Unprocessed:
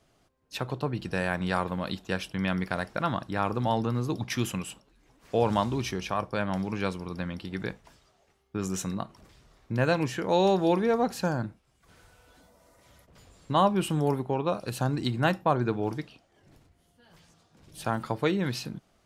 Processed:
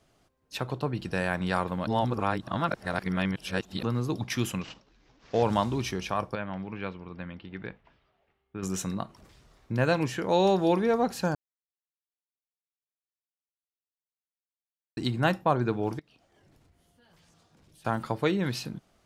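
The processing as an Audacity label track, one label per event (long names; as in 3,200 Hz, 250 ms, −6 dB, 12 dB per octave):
1.870000	3.830000	reverse
4.610000	5.430000	variable-slope delta modulation 32 kbit/s
6.350000	8.630000	transistor ladder low-pass 3,600 Hz, resonance 25%
11.350000	14.970000	silence
15.990000	17.850000	downward compressor 4 to 1, threshold −58 dBFS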